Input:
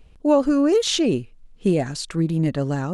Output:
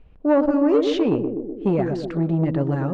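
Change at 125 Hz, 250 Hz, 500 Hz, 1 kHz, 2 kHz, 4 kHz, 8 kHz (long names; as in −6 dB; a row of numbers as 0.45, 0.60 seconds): +0.5 dB, +0.5 dB, +0.5 dB, +0.5 dB, −1.5 dB, −9.5 dB, below −20 dB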